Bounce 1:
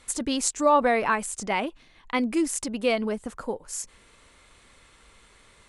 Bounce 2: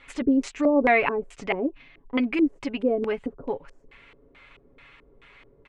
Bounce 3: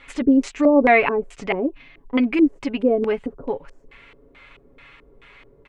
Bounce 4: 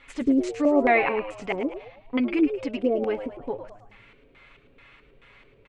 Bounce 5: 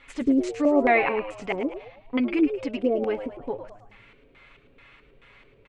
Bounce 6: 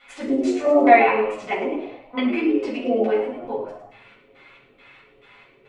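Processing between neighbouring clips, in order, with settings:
comb filter 7.2 ms, depth 57%; auto-filter low-pass square 2.3 Hz 400–2,500 Hz
harmonic and percussive parts rebalanced harmonic +3 dB; level +2.5 dB
echo with shifted repeats 107 ms, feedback 41%, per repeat +97 Hz, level −10.5 dB; level −5.5 dB
no processing that can be heard
high-pass filter 430 Hz 6 dB per octave; convolution reverb RT60 0.45 s, pre-delay 4 ms, DRR −8 dB; level −5 dB

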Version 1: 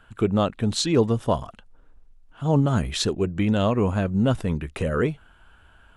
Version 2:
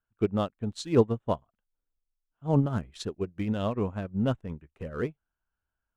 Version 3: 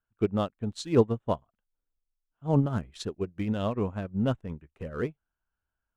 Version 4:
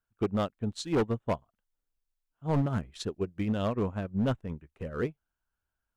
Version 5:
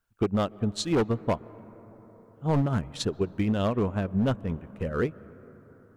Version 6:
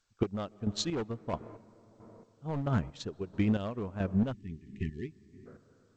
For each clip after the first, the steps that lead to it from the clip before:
adaptive Wiener filter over 9 samples; expander for the loud parts 2.5 to 1, over −37 dBFS
no processing that can be heard
gain into a clipping stage and back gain 22 dB
downward compressor 2.5 to 1, threshold −30 dBFS, peak gain reduction 4.5 dB; on a send at −20 dB: convolution reverb RT60 5.3 s, pre-delay 119 ms; on the sum: level +7 dB
square-wave tremolo 1.5 Hz, depth 65%, duty 35%; time-frequency box erased 0:04.33–0:05.46, 410–1,700 Hz; level −1.5 dB; G.722 64 kbit/s 16,000 Hz

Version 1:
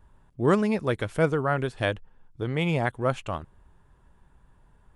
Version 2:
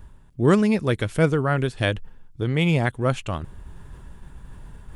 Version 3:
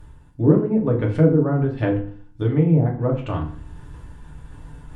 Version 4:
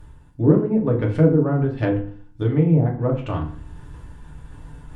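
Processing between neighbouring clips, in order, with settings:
parametric band 850 Hz −7 dB 2.2 octaves; reversed playback; upward compression, threshold −35 dBFS; reversed playback; level +7 dB
treble cut that deepens with the level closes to 570 Hz, closed at −16.5 dBFS; feedback delay network reverb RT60 0.48 s, low-frequency decay 1.25×, high-frequency decay 0.75×, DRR −1.5 dB; level −1.5 dB
stylus tracing distortion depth 0.027 ms

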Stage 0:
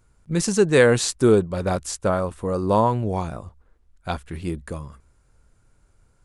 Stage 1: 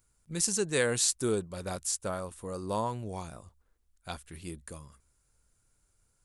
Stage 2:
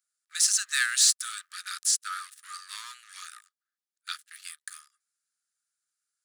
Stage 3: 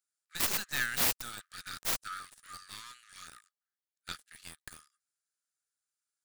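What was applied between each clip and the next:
first-order pre-emphasis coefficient 0.8
leveller curve on the samples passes 3; Chebyshev high-pass with heavy ripple 1,200 Hz, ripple 6 dB
stylus tracing distortion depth 0.26 ms; level −6 dB

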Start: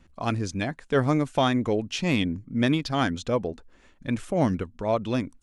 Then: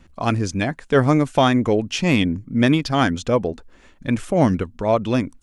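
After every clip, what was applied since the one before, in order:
dynamic equaliser 3,900 Hz, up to −5 dB, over −53 dBFS, Q 5.1
level +6.5 dB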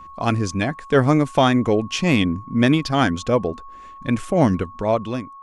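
fade-out on the ending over 0.59 s
steady tone 1,100 Hz −38 dBFS

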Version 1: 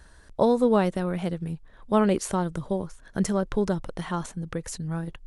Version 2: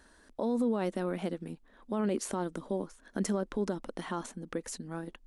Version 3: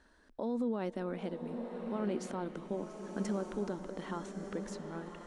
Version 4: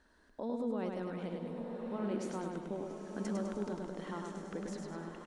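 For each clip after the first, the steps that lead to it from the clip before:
low shelf with overshoot 180 Hz −9 dB, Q 3; brickwall limiter −17.5 dBFS, peak gain reduction 11.5 dB; level −4.5 dB
high-frequency loss of the air 75 metres; slow-attack reverb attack 1,230 ms, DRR 5 dB; level −4.5 dB
repeating echo 102 ms, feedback 49%, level −4 dB; level −3 dB

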